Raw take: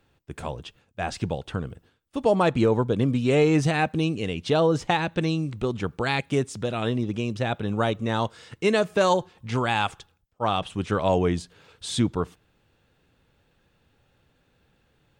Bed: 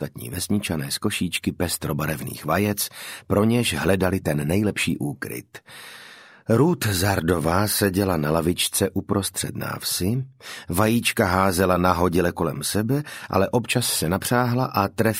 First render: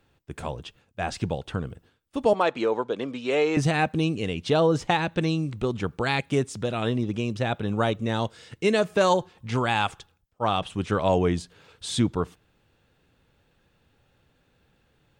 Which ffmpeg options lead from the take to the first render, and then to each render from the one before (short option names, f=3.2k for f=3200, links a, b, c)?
-filter_complex "[0:a]asettb=1/sr,asplit=3[a][b][c];[a]atrim=end=2.334[d];[b]atrim=start=2.33:end=3.57,asetpts=PTS-STARTPTS,afade=t=in:d=0.004:c=qsin,afade=t=out:st=1.236:d=0.004:c=qsin,highpass=420,lowpass=6k[e];[c]atrim=start=3.566[f];[d][e]acrossfade=d=0.004:c1=hsin:c2=qsin[g];[g][f]acrossfade=d=0.004:c1=qsin:c2=hsin,asettb=1/sr,asplit=3[h][i][j];[h]atrim=end=7.954[k];[i]atrim=start=7.95:end=8.79,asetpts=PTS-STARTPTS,afade=t=in:d=0.004:c=qsin,afade=t=out:st=0.836:d=0.004:c=qsin,equalizer=f=1.1k:w=1.5:g=-5[l];[j]atrim=start=8.786[m];[k][l]acrossfade=d=0.004:c1=hsin:c2=qsin[n];[n][m]acrossfade=d=0.004:c1=qsin:c2=hsin"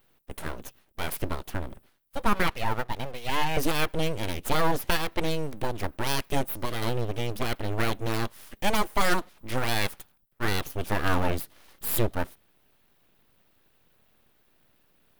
-af "aeval=exprs='abs(val(0))':c=same,aexciter=amount=5.1:drive=2.3:freq=9.8k"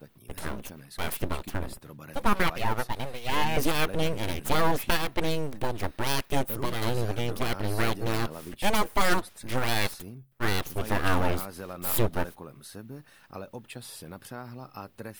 -filter_complex "[1:a]volume=-20.5dB[a];[0:a][a]amix=inputs=2:normalize=0"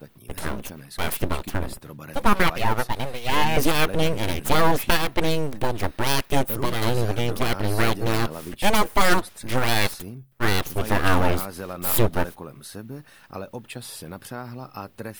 -af "volume=5.5dB"